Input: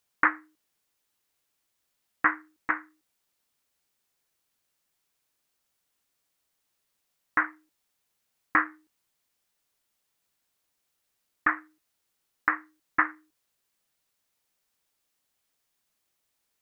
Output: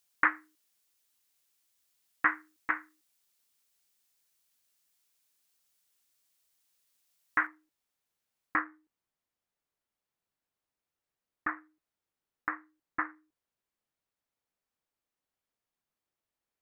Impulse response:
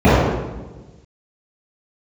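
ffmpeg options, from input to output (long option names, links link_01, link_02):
-af "asetnsamples=nb_out_samples=441:pad=0,asendcmd='7.47 highshelf g -2.5;8.59 highshelf g -11',highshelf=frequency=2400:gain=10,volume=-6dB"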